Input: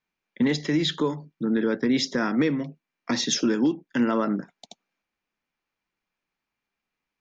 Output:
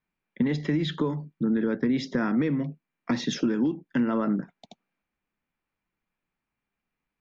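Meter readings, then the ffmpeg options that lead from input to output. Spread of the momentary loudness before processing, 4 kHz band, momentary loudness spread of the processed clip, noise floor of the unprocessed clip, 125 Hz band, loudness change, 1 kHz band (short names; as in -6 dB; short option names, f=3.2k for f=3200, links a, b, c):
8 LU, -8.5 dB, 6 LU, under -85 dBFS, +2.0 dB, -2.5 dB, -3.5 dB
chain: -af "bass=f=250:g=7,treble=f=4k:g=-13,acompressor=threshold=-20dB:ratio=6,volume=-1dB"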